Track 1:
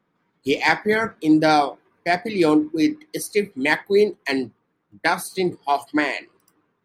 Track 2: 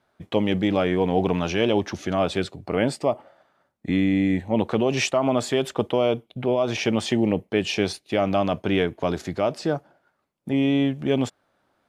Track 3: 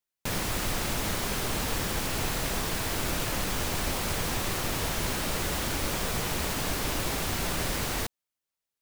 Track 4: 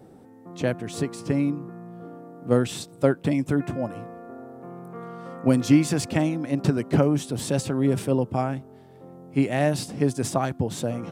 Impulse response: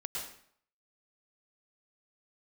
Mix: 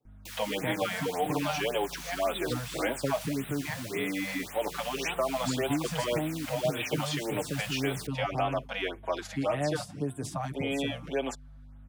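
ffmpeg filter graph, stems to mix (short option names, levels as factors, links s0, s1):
-filter_complex "[0:a]volume=0.119[s0];[1:a]highpass=560,aeval=exprs='val(0)+0.00398*(sin(2*PI*50*n/s)+sin(2*PI*2*50*n/s)/2+sin(2*PI*3*50*n/s)/3+sin(2*PI*4*50*n/s)/4+sin(2*PI*5*50*n/s)/5)':c=same,asplit=2[s1][s2];[s2]adelay=5.8,afreqshift=-0.33[s3];[s1][s3]amix=inputs=2:normalize=1,adelay=50,volume=1.19[s4];[2:a]highpass=1300,volume=0.335[s5];[3:a]agate=range=0.0891:threshold=0.0112:ratio=16:detection=peak,aecho=1:1:6.7:0.53,volume=0.335[s6];[s0][s4][s5][s6]amix=inputs=4:normalize=0,acrossover=split=270|550|1600|6900[s7][s8][s9][s10][s11];[s7]acompressor=threshold=0.0224:ratio=4[s12];[s8]acompressor=threshold=0.0178:ratio=4[s13];[s9]acompressor=threshold=0.0355:ratio=4[s14];[s10]acompressor=threshold=0.02:ratio=4[s15];[s11]acompressor=threshold=0.00631:ratio=4[s16];[s12][s13][s14][s15][s16]amix=inputs=5:normalize=0,afftfilt=real='re*(1-between(b*sr/1024,310*pow(5700/310,0.5+0.5*sin(2*PI*1.8*pts/sr))/1.41,310*pow(5700/310,0.5+0.5*sin(2*PI*1.8*pts/sr))*1.41))':imag='im*(1-between(b*sr/1024,310*pow(5700/310,0.5+0.5*sin(2*PI*1.8*pts/sr))/1.41,310*pow(5700/310,0.5+0.5*sin(2*PI*1.8*pts/sr))*1.41))':win_size=1024:overlap=0.75"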